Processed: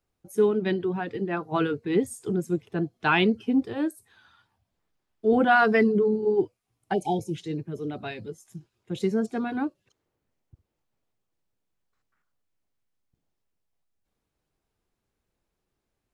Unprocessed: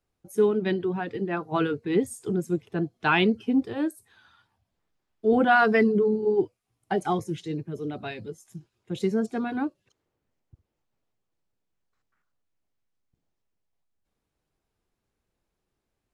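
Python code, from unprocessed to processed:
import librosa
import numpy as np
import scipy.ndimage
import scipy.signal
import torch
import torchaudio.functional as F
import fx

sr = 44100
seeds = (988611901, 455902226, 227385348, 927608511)

y = fx.brickwall_bandstop(x, sr, low_hz=940.0, high_hz=2200.0, at=(6.93, 7.34), fade=0.02)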